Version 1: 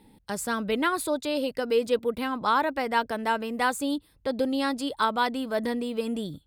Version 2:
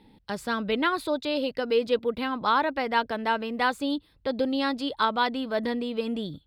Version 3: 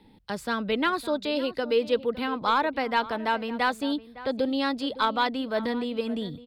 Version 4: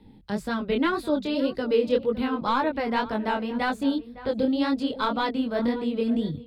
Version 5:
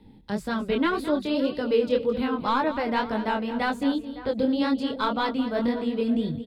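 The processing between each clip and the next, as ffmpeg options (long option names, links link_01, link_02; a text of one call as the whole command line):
ffmpeg -i in.wav -af "highshelf=frequency=5700:width_type=q:width=1.5:gain=-10.5" out.wav
ffmpeg -i in.wav -filter_complex "[0:a]acrossover=split=230|970|1800[link_01][link_02][link_03][link_04];[link_03]aeval=exprs='clip(val(0),-1,0.0501)':channel_layout=same[link_05];[link_01][link_02][link_05][link_04]amix=inputs=4:normalize=0,asplit=2[link_06][link_07];[link_07]adelay=559.8,volume=-16dB,highshelf=frequency=4000:gain=-12.6[link_08];[link_06][link_08]amix=inputs=2:normalize=0" out.wav
ffmpeg -i in.wav -af "lowshelf=frequency=360:gain=11.5,flanger=delay=18.5:depth=7.8:speed=1.9" out.wav
ffmpeg -i in.wav -af "aecho=1:1:216:0.224" out.wav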